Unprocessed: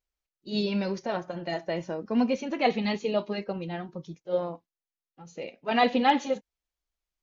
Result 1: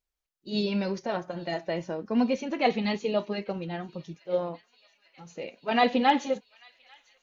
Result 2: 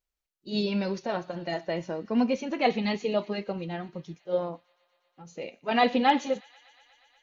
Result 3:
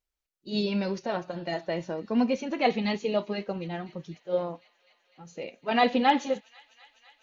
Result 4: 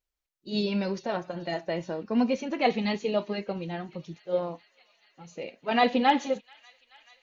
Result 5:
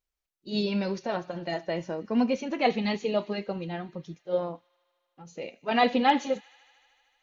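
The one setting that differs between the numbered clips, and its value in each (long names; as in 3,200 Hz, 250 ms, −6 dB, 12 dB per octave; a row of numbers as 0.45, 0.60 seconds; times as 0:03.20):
delay with a high-pass on its return, delay time: 842, 120, 251, 432, 76 milliseconds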